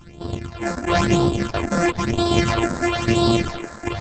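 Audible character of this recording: a buzz of ramps at a fixed pitch in blocks of 128 samples; tremolo saw down 1.3 Hz, depth 60%; phasing stages 8, 1 Hz, lowest notch 110–2100 Hz; Opus

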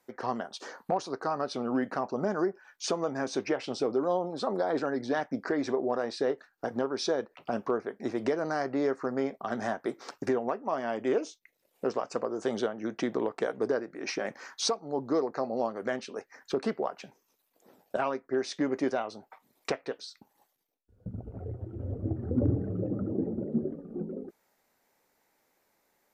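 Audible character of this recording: noise floor -74 dBFS; spectral tilt -5.0 dB/oct

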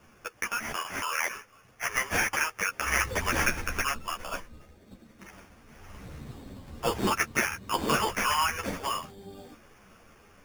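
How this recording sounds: random-step tremolo 2.1 Hz; aliases and images of a low sample rate 4000 Hz, jitter 0%; a shimmering, thickened sound

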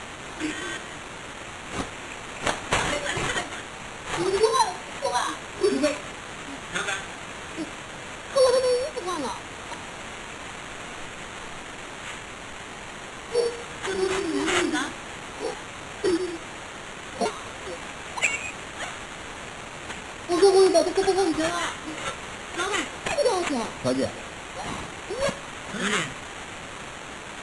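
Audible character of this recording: a quantiser's noise floor 8-bit, dither triangular; phasing stages 2, 0.26 Hz, lowest notch 680–2400 Hz; aliases and images of a low sample rate 5000 Hz, jitter 0%; MP3

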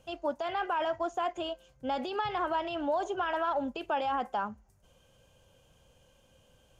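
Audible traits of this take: noise floor -65 dBFS; spectral tilt -1.5 dB/oct

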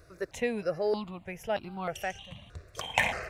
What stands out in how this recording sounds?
notches that jump at a steady rate 3.2 Hz 840–1800 Hz

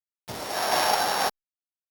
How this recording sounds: a buzz of ramps at a fixed pitch in blocks of 8 samples; random-step tremolo 4.2 Hz; a quantiser's noise floor 6-bit, dither none; Opus

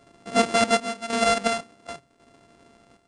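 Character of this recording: a buzz of ramps at a fixed pitch in blocks of 64 samples; chopped level 0.91 Hz, depth 65%, duty 70%; MP2

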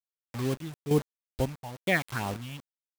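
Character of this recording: phasing stages 6, 2.3 Hz, lowest notch 380–1800 Hz; a quantiser's noise floor 6-bit, dither none; chopped level 1.1 Hz, depth 65%, duty 60%

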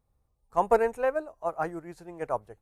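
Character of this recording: noise floor -74 dBFS; spectral tilt -0.5 dB/oct

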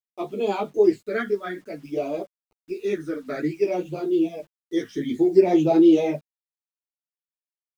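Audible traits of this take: phasing stages 12, 0.56 Hz, lowest notch 800–1800 Hz; a quantiser's noise floor 10-bit, dither none; a shimmering, thickened sound

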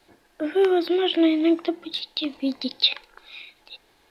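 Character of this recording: noise floor -62 dBFS; spectral tilt -5.5 dB/oct

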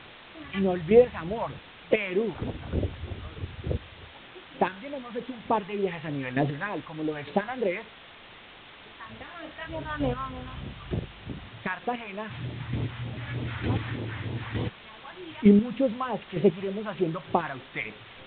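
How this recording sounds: chopped level 1.1 Hz, depth 60%, duty 15%; phasing stages 2, 3.3 Hz, lowest notch 360–1600 Hz; a quantiser's noise floor 8-bit, dither triangular; µ-law

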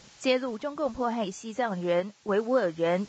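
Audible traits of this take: a quantiser's noise floor 10-bit, dither triangular; random-step tremolo; Vorbis

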